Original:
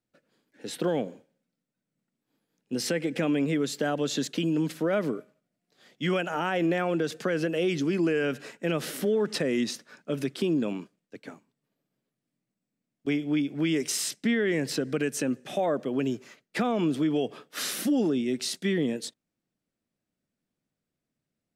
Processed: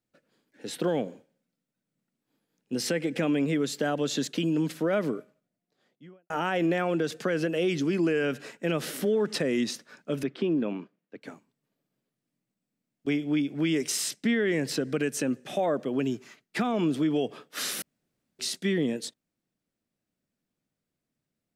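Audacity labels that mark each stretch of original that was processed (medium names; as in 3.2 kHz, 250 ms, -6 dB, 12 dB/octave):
5.150000	6.300000	studio fade out
10.230000	11.220000	band-pass 150–2700 Hz
16.030000	16.740000	peaking EQ 530 Hz -13 dB 0.21 oct
17.820000	18.390000	room tone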